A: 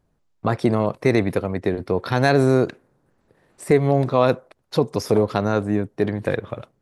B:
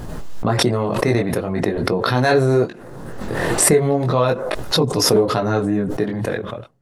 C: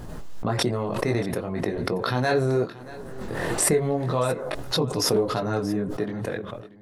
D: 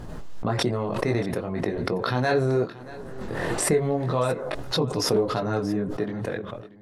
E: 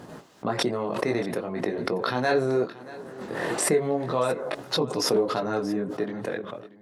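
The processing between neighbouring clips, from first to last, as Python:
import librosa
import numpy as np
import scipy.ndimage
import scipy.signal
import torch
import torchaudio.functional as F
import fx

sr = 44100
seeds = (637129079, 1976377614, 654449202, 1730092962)

y1 = fx.notch(x, sr, hz=2300.0, q=13.0)
y1 = fx.chorus_voices(y1, sr, voices=6, hz=0.38, base_ms=21, depth_ms=4.9, mix_pct=45)
y1 = fx.pre_swell(y1, sr, db_per_s=29.0)
y1 = F.gain(torch.from_numpy(y1), 3.0).numpy()
y2 = y1 + 10.0 ** (-18.5 / 20.0) * np.pad(y1, (int(631 * sr / 1000.0), 0))[:len(y1)]
y2 = F.gain(torch.from_numpy(y2), -7.0).numpy()
y3 = fx.high_shelf(y2, sr, hz=9200.0, db=-9.5)
y4 = scipy.signal.sosfilt(scipy.signal.butter(2, 200.0, 'highpass', fs=sr, output='sos'), y3)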